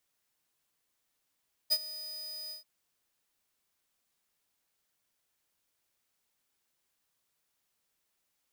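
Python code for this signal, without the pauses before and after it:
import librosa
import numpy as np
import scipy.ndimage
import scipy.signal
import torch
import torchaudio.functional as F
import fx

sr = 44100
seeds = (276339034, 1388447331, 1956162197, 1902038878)

y = fx.adsr_tone(sr, wave='square', hz=4970.0, attack_ms=24.0, decay_ms=52.0, sustain_db=-17.5, held_s=0.81, release_ms=126.0, level_db=-24.5)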